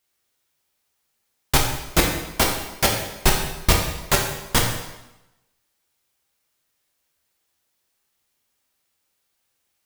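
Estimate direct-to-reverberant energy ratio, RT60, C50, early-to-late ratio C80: −0.5 dB, 0.95 s, 4.5 dB, 7.0 dB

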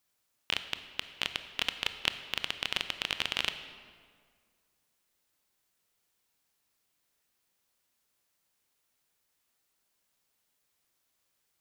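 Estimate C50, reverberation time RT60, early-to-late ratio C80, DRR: 10.5 dB, 1.9 s, 11.5 dB, 9.5 dB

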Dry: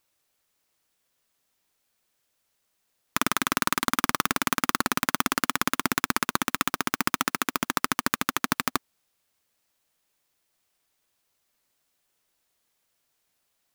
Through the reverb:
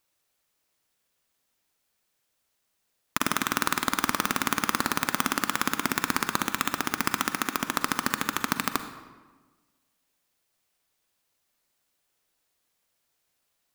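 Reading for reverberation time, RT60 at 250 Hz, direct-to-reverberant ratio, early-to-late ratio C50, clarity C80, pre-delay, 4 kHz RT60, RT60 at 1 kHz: 1.3 s, 1.5 s, 8.5 dB, 9.5 dB, 11.0 dB, 38 ms, 0.90 s, 1.3 s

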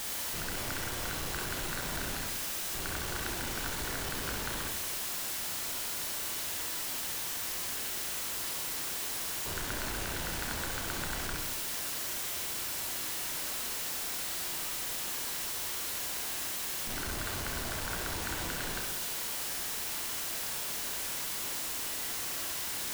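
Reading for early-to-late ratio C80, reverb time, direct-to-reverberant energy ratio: 6.5 dB, 0.95 s, 1.0 dB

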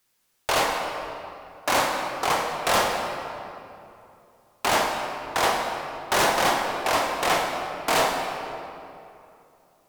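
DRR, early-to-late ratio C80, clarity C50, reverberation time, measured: 1.0 dB, 3.5 dB, 2.5 dB, 2.8 s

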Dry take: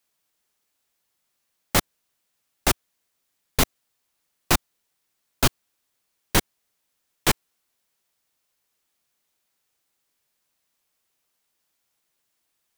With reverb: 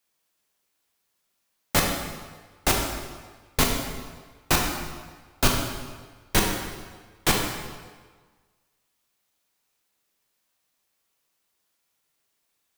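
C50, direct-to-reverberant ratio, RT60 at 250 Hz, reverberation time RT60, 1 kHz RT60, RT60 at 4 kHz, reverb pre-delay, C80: 3.0 dB, 0.0 dB, 1.4 s, 1.5 s, 1.5 s, 1.2 s, 14 ms, 5.0 dB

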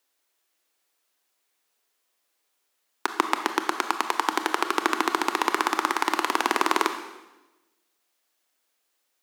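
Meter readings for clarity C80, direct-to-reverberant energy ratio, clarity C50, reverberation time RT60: 10.5 dB, 7.0 dB, 8.5 dB, 1.1 s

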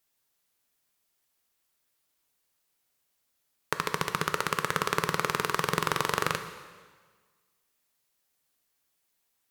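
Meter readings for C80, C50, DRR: 11.0 dB, 9.5 dB, 8.0 dB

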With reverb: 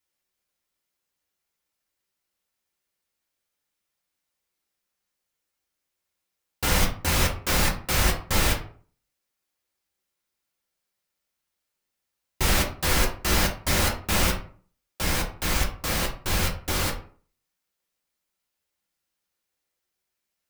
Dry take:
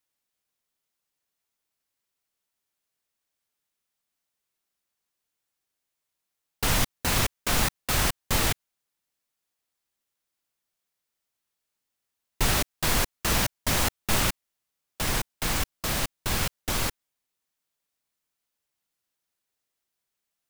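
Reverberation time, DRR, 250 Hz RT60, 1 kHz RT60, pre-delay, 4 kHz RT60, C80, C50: 0.45 s, −1.5 dB, 0.50 s, 0.45 s, 3 ms, 0.25 s, 14.0 dB, 9.0 dB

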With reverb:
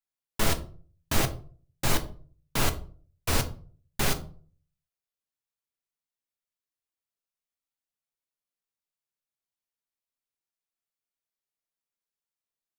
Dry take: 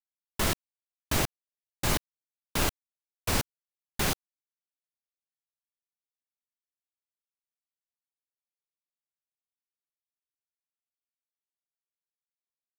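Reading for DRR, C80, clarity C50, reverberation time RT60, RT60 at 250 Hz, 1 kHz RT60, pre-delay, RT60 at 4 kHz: 6.0 dB, 19.0 dB, 14.5 dB, 0.45 s, 0.50 s, 0.40 s, 4 ms, 0.30 s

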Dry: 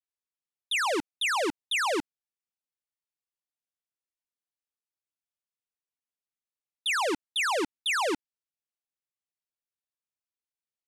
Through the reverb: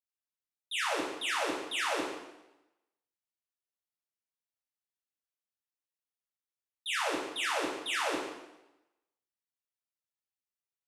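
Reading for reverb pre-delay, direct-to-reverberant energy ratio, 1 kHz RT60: 3 ms, −5.5 dB, 0.95 s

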